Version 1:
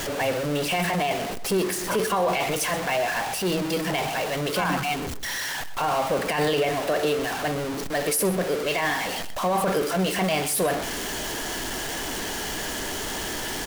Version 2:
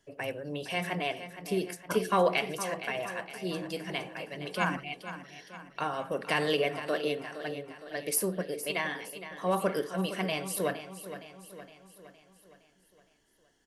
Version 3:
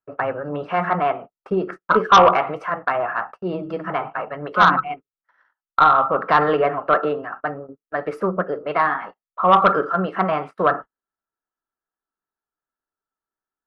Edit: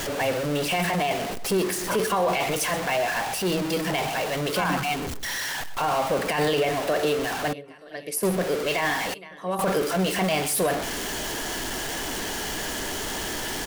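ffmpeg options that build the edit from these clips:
ffmpeg -i take0.wav -i take1.wav -filter_complex "[1:a]asplit=2[link_01][link_02];[0:a]asplit=3[link_03][link_04][link_05];[link_03]atrim=end=7.532[link_06];[link_01]atrim=start=7.528:end=8.232[link_07];[link_04]atrim=start=8.228:end=9.142[link_08];[link_02]atrim=start=9.138:end=9.592[link_09];[link_05]atrim=start=9.588[link_10];[link_06][link_07]acrossfade=duration=0.004:curve1=hsin:curve2=hsin[link_11];[link_11][link_08]acrossfade=duration=0.004:curve1=hsin:curve2=hsin[link_12];[link_12][link_09]acrossfade=duration=0.004:curve1=hsin:curve2=hsin[link_13];[link_13][link_10]acrossfade=duration=0.004:curve1=hsin:curve2=hsin" out.wav

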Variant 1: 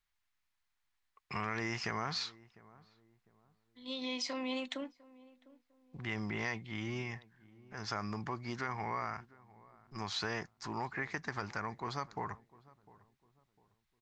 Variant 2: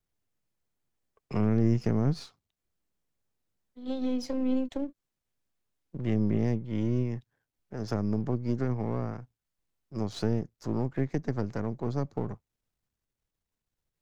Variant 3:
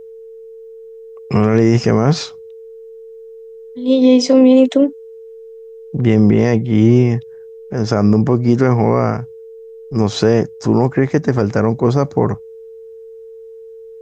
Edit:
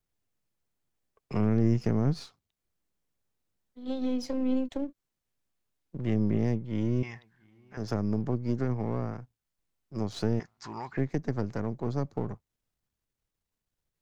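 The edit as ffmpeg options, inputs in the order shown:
ffmpeg -i take0.wav -i take1.wav -filter_complex "[0:a]asplit=2[link_01][link_02];[1:a]asplit=3[link_03][link_04][link_05];[link_03]atrim=end=7.032[link_06];[link_01]atrim=start=7.028:end=7.772[link_07];[link_04]atrim=start=7.768:end=10.402[link_08];[link_02]atrim=start=10.398:end=10.972[link_09];[link_05]atrim=start=10.968[link_10];[link_06][link_07]acrossfade=duration=0.004:curve1=hsin:curve2=hsin[link_11];[link_11][link_08]acrossfade=duration=0.004:curve1=hsin:curve2=hsin[link_12];[link_12][link_09]acrossfade=duration=0.004:curve1=hsin:curve2=hsin[link_13];[link_13][link_10]acrossfade=duration=0.004:curve1=hsin:curve2=hsin" out.wav

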